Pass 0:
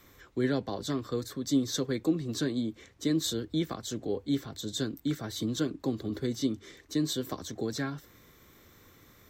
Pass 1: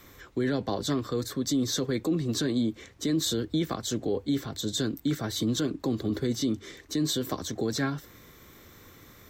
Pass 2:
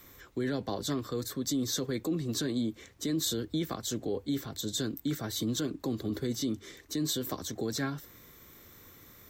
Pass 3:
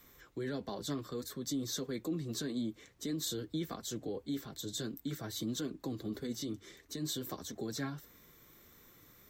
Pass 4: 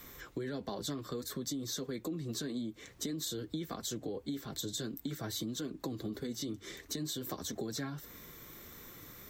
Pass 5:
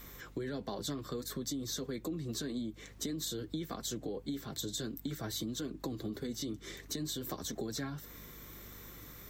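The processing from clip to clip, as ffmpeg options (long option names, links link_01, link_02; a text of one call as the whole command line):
ffmpeg -i in.wav -af "alimiter=level_in=0.5dB:limit=-24dB:level=0:latency=1:release=17,volume=-0.5dB,volume=5.5dB" out.wav
ffmpeg -i in.wav -af "highshelf=frequency=9300:gain=9.5,volume=-4.5dB" out.wav
ffmpeg -i in.wav -af "flanger=delay=4:depth=2.9:regen=-47:speed=1.6:shape=triangular,volume=-2dB" out.wav
ffmpeg -i in.wav -af "acompressor=threshold=-45dB:ratio=6,volume=9dB" out.wav
ffmpeg -i in.wav -af "aeval=exprs='val(0)+0.00178*(sin(2*PI*50*n/s)+sin(2*PI*2*50*n/s)/2+sin(2*PI*3*50*n/s)/3+sin(2*PI*4*50*n/s)/4+sin(2*PI*5*50*n/s)/5)':channel_layout=same" out.wav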